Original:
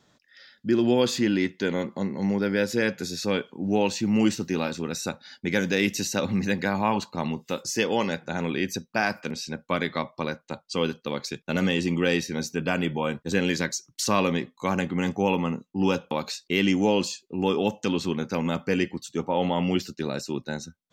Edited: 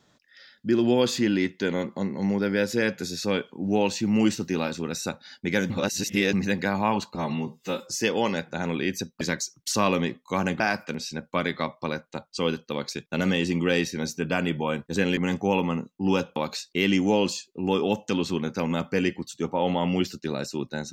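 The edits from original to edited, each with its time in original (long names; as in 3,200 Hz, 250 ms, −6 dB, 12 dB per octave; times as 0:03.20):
0:05.70–0:06.33: reverse
0:07.15–0:07.65: time-stretch 1.5×
0:13.53–0:14.92: move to 0:08.96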